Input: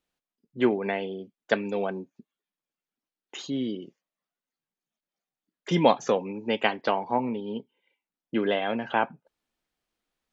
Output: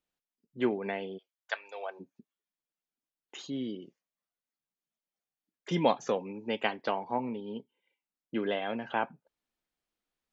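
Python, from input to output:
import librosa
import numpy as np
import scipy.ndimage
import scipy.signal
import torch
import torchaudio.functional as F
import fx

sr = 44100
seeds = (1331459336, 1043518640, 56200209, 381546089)

y = fx.highpass(x, sr, hz=fx.line((1.17, 1100.0), (1.99, 490.0)), slope=24, at=(1.17, 1.99), fade=0.02)
y = y * 10.0 ** (-6.0 / 20.0)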